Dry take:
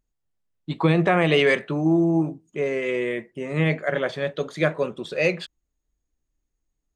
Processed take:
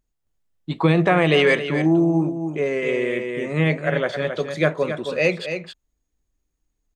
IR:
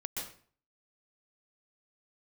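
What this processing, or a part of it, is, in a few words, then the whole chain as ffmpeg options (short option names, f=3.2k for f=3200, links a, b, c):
ducked delay: -filter_complex "[0:a]asplit=3[a][b][c];[b]adelay=269,volume=-3dB[d];[c]apad=whole_len=318708[e];[d][e]sidechaincompress=threshold=-23dB:ratio=6:attack=8.6:release=897[f];[a][f]amix=inputs=2:normalize=0,volume=2dB"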